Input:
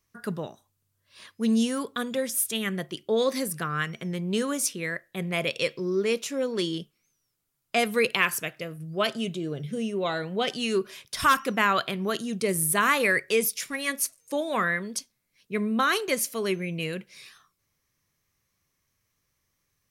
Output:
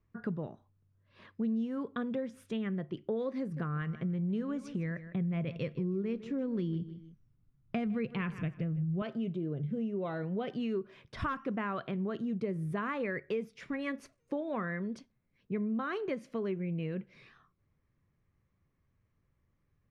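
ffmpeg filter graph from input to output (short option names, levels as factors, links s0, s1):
-filter_complex "[0:a]asettb=1/sr,asplit=3[s0][s1][s2];[s0]atrim=end=3.414[s3];[s1]atrim=start=3.41:end=9.02,asetpts=PTS-STARTPTS,afade=t=in:d=0.004:c=qsin,afade=t=out:st=5.606:d=0.004:c=qsin,asubboost=boost=5.5:cutoff=210,aecho=1:1:156|312:0.141|0.0339,atrim=end_sample=247401[s4];[s2]atrim=start=9.016[s5];[s3][s4]acrossfade=d=0.004:c1=hsin:c2=qsin[s6];[s6][s5]acrossfade=d=0.004:c1=qsin:c2=hsin,lowpass=2000,lowshelf=f=430:g=12,acompressor=threshold=0.0398:ratio=4,volume=0.562"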